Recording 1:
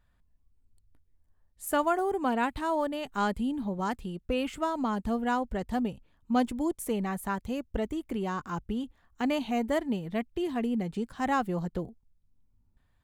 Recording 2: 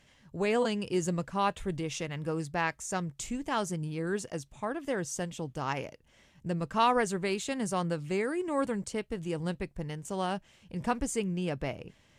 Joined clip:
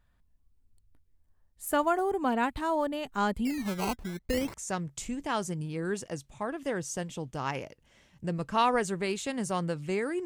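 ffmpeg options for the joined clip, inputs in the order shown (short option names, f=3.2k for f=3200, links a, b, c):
-filter_complex "[0:a]asettb=1/sr,asplit=3[a][b][c];[a]atrim=end=3.454[d];[b]atrim=start=3.45:end=4.54,asetpts=PTS-STARTPTS,afade=t=in:d=0.004:c=qsin,afade=t=out:st=1.086:d=0.004:c=qsin,acrusher=samples=17:mix=1:aa=0.000001:lfo=1:lforange=17:lforate=0.53[e];[c]atrim=start=4.536[f];[d][e]acrossfade=d=0.004:c1=hsin:c2=qsin[g];[g][f]acrossfade=d=0.004:c1=qsin:c2=hsin,apad=whole_dur=10.25,atrim=end=10.25,atrim=end=4.542[h];[1:a]atrim=start=2.758:end=8.47[i];[h][i]acrossfade=d=0.004:c1=hsin:c2=hsin"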